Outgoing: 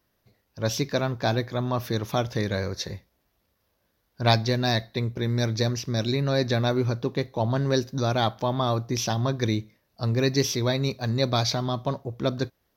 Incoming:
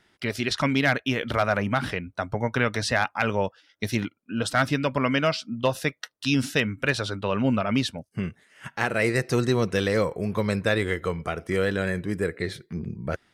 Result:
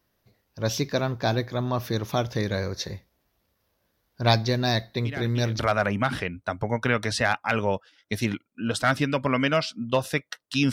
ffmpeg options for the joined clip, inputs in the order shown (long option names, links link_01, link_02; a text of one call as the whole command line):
ffmpeg -i cue0.wav -i cue1.wav -filter_complex "[1:a]asplit=2[link_01][link_02];[0:a]apad=whole_dur=10.72,atrim=end=10.72,atrim=end=5.592[link_03];[link_02]atrim=start=1.298:end=6.43[link_04];[link_01]atrim=start=0.76:end=1.3,asetpts=PTS-STARTPTS,volume=-13.5dB,afade=type=in:duration=0.004:curve=hsin,afade=type=out:start_time=0.536:duration=0.004:curve=hsin,adelay=222705S[link_05];[link_03][link_04]acrossfade=duration=0.004:curve1=hsin:curve2=hsin[link_06];[link_06][link_05]amix=inputs=2:normalize=0" out.wav